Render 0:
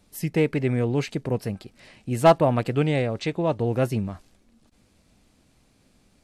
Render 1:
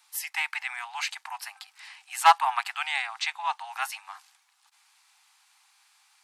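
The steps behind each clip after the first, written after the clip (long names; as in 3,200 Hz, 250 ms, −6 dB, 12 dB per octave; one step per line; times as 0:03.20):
Butterworth high-pass 790 Hz 96 dB per octave
level +5 dB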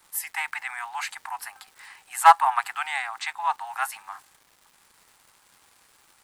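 flat-topped bell 3,800 Hz −8.5 dB
surface crackle 410 per second −49 dBFS
level +4 dB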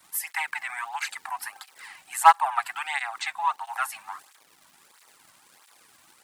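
in parallel at −2 dB: downward compressor, threshold −32 dBFS, peak gain reduction 22 dB
on the sum: through-zero flanger with one copy inverted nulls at 1.5 Hz, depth 2.5 ms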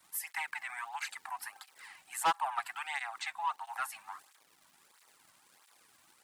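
soft clipping −15.5 dBFS, distortion −7 dB
level −7.5 dB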